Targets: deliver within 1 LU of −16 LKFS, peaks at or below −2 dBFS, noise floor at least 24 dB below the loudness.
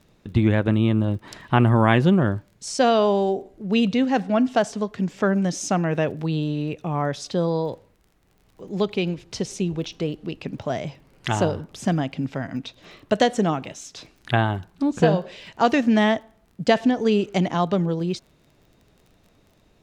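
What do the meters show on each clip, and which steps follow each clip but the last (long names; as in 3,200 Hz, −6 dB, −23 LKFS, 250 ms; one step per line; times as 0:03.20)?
crackle rate 28 per second; integrated loudness −23.0 LKFS; sample peak −4.0 dBFS; target loudness −16.0 LKFS
→ click removal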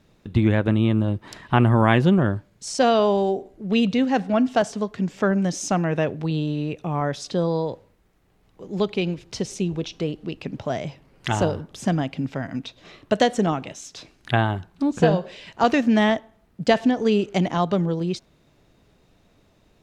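crackle rate 0 per second; integrated loudness −23.0 LKFS; sample peak −4.0 dBFS; target loudness −16.0 LKFS
→ level +7 dB
brickwall limiter −2 dBFS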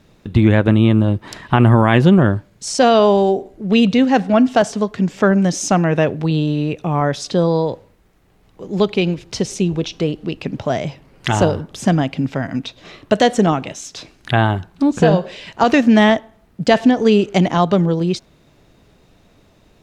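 integrated loudness −16.5 LKFS; sample peak −2.0 dBFS; background noise floor −53 dBFS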